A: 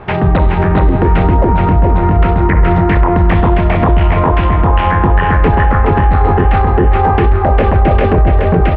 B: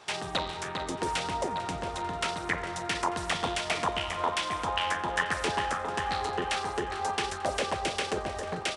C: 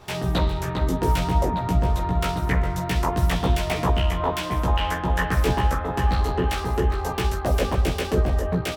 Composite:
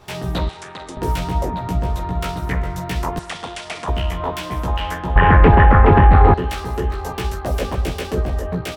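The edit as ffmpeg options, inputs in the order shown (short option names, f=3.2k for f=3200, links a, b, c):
-filter_complex "[1:a]asplit=2[a][b];[2:a]asplit=4[c][d][e][f];[c]atrim=end=0.492[g];[a]atrim=start=0.488:end=0.972[h];[d]atrim=start=0.968:end=3.192[i];[b]atrim=start=3.188:end=3.882[j];[e]atrim=start=3.878:end=5.162[k];[0:a]atrim=start=5.158:end=6.342[l];[f]atrim=start=6.338[m];[g][h]acrossfade=d=0.004:c1=hsin:c2=hsin[n];[n][i]acrossfade=d=0.004:c1=hsin:c2=hsin[o];[o][j]acrossfade=d=0.004:c1=hsin:c2=hsin[p];[p][k]acrossfade=d=0.004:c1=hsin:c2=hsin[q];[q][l]acrossfade=d=0.004:c1=hsin:c2=hsin[r];[r][m]acrossfade=d=0.004:c1=hsin:c2=hsin"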